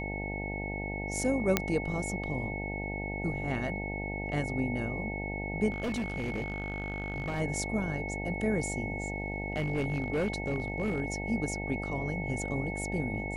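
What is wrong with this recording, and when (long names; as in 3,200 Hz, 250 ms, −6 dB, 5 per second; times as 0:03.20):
mains buzz 50 Hz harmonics 18 −37 dBFS
whistle 2,200 Hz −38 dBFS
0:01.57: click −8 dBFS
0:05.70–0:07.41: clipping −29 dBFS
0:09.00–0:11.00: clipping −25 dBFS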